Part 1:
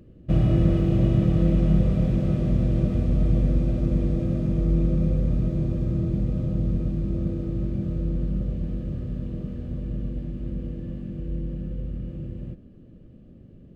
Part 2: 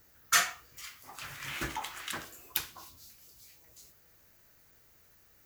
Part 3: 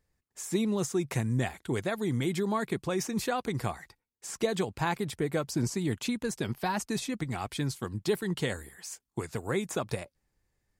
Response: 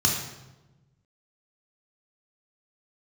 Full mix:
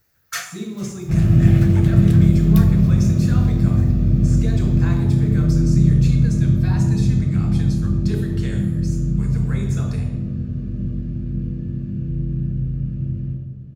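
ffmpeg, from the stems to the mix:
-filter_complex "[0:a]adelay=800,volume=-4.5dB,asplit=2[a][b];[b]volume=-9.5dB[c];[1:a]volume=-3dB,asplit=2[d][e];[e]volume=-22dB[f];[2:a]volume=-7dB,asplit=2[g][h];[h]volume=-9dB[i];[3:a]atrim=start_sample=2205[j];[c][f][i]amix=inputs=3:normalize=0[k];[k][j]afir=irnorm=-1:irlink=0[l];[a][d][g][l]amix=inputs=4:normalize=0"

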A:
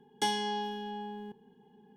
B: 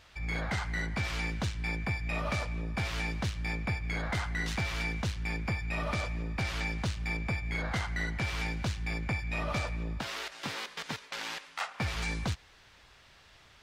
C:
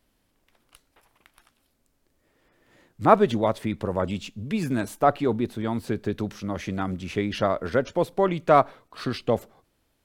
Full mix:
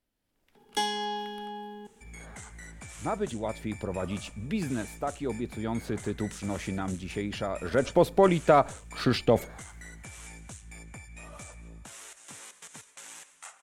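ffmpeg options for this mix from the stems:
-filter_complex "[0:a]equalizer=f=88:w=0.47:g=-7.5,adelay=550,volume=2dB[a];[1:a]aexciter=amount=15.6:drive=6.8:freq=7.1k,lowpass=f=9k:w=0.5412,lowpass=f=9k:w=1.3066,acompressor=threshold=-29dB:ratio=6,adelay=1850,volume=-11.5dB[b];[2:a]bandreject=f=1.1k:w=12,dynaudnorm=f=110:g=7:m=12dB,alimiter=limit=-6.5dB:level=0:latency=1,volume=-3dB,afade=t=in:st=7.61:d=0.4:silence=0.298538[c];[a][b][c]amix=inputs=3:normalize=0"

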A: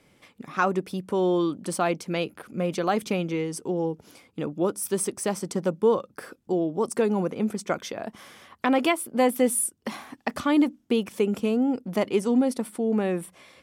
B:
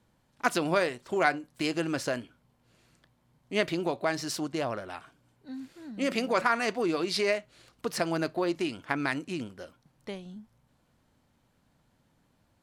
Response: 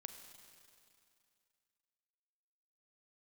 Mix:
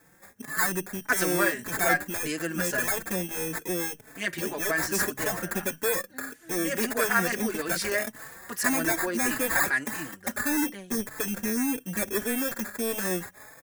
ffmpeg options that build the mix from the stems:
-filter_complex "[0:a]acrusher=samples=15:mix=1:aa=0.000001,asoftclip=type=tanh:threshold=-24.5dB,volume=0.5dB[a];[1:a]acontrast=83,adelay=650,volume=-9dB[b];[a][b]amix=inputs=2:normalize=0,equalizer=f=1.7k:t=o:w=0.43:g=15,aexciter=amount=4.4:drive=5.7:freq=6k,asplit=2[c][d];[d]adelay=4.1,afreqshift=1.7[e];[c][e]amix=inputs=2:normalize=1"

